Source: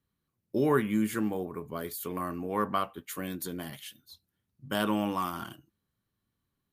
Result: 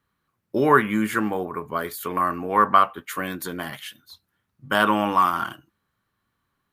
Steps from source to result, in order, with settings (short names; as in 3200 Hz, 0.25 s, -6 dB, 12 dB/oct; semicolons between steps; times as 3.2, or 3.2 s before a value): bell 1300 Hz +12 dB 2.1 oct; gain +3 dB